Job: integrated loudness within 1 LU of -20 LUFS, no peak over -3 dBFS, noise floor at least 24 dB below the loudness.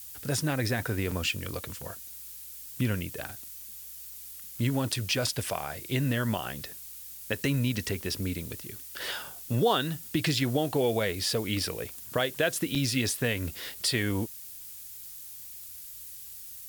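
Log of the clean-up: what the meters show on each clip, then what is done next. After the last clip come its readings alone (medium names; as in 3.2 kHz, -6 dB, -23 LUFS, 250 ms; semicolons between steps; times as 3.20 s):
dropouts 3; longest dropout 5.1 ms; noise floor -44 dBFS; noise floor target -55 dBFS; loudness -31.0 LUFS; peak level -12.0 dBFS; loudness target -20.0 LUFS
-> interpolate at 1.11/4.92/12.75 s, 5.1 ms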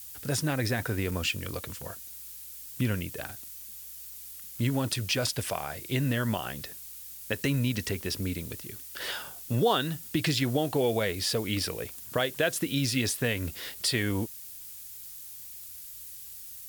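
dropouts 0; noise floor -44 dBFS; noise floor target -55 dBFS
-> noise print and reduce 11 dB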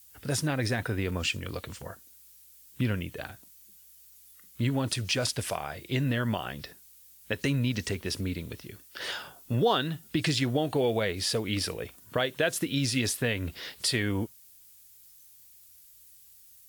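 noise floor -55 dBFS; loudness -30.0 LUFS; peak level -12.0 dBFS; loudness target -20.0 LUFS
-> trim +10 dB; peak limiter -3 dBFS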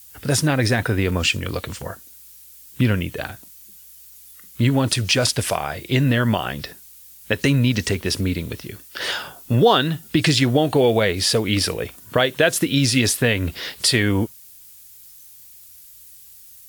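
loudness -20.0 LUFS; peak level -3.0 dBFS; noise floor -45 dBFS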